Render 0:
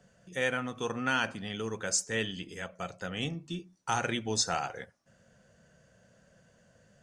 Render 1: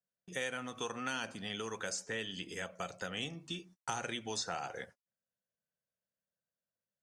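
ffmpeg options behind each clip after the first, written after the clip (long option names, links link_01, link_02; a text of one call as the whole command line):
ffmpeg -i in.wav -filter_complex "[0:a]agate=range=-38dB:threshold=-52dB:ratio=16:detection=peak,lowshelf=frequency=160:gain=-8,acrossover=split=670|3800[link_01][link_02][link_03];[link_01]acompressor=threshold=-46dB:ratio=4[link_04];[link_02]acompressor=threshold=-44dB:ratio=4[link_05];[link_03]acompressor=threshold=-47dB:ratio=4[link_06];[link_04][link_05][link_06]amix=inputs=3:normalize=0,volume=3dB" out.wav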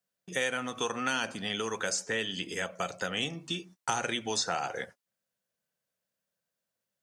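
ffmpeg -i in.wav -af "lowshelf=frequency=83:gain=-10,volume=7.5dB" out.wav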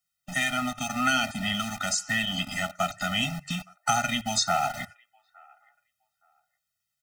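ffmpeg -i in.wav -filter_complex "[0:a]acrossover=split=130|890|2900[link_01][link_02][link_03][link_04];[link_02]acrusher=bits=6:mix=0:aa=0.000001[link_05];[link_03]asplit=2[link_06][link_07];[link_07]adelay=867,lowpass=frequency=1200:poles=1,volume=-19.5dB,asplit=2[link_08][link_09];[link_09]adelay=867,lowpass=frequency=1200:poles=1,volume=0.27[link_10];[link_06][link_08][link_10]amix=inputs=3:normalize=0[link_11];[link_01][link_05][link_11][link_04]amix=inputs=4:normalize=0,afftfilt=real='re*eq(mod(floor(b*sr/1024/300),2),0)':imag='im*eq(mod(floor(b*sr/1024/300),2),0)':win_size=1024:overlap=0.75,volume=8dB" out.wav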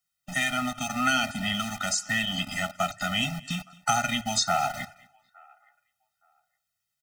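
ffmpeg -i in.wav -af "aecho=1:1:223|446:0.0668|0.012" out.wav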